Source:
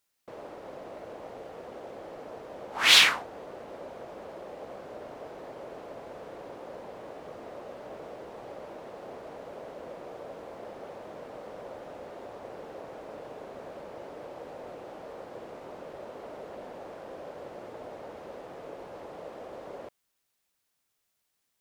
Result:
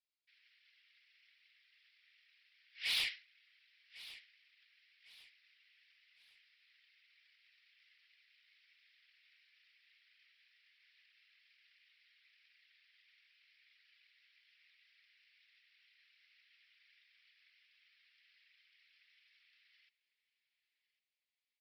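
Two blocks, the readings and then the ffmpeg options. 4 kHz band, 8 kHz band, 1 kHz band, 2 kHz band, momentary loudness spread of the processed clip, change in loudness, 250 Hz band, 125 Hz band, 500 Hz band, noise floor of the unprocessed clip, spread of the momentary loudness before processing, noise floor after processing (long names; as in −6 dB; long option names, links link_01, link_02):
−16.5 dB, −22.0 dB, −32.0 dB, −17.5 dB, 22 LU, −10.5 dB, below −35 dB, below −25 dB, below −40 dB, −79 dBFS, 1 LU, below −85 dBFS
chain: -filter_complex "[0:a]aresample=11025,aeval=exprs='max(val(0),0)':channel_layout=same,aresample=44100,asuperpass=centerf=3800:order=12:qfactor=0.75,asoftclip=type=tanh:threshold=-22.5dB,afftfilt=real='hypot(re,im)*cos(2*PI*random(0))':imag='hypot(re,im)*sin(2*PI*random(1))':win_size=512:overlap=0.75,asplit=2[link_01][link_02];[link_02]aecho=0:1:1103|2206|3309:0.133|0.0453|0.0154[link_03];[link_01][link_03]amix=inputs=2:normalize=0,volume=-1dB"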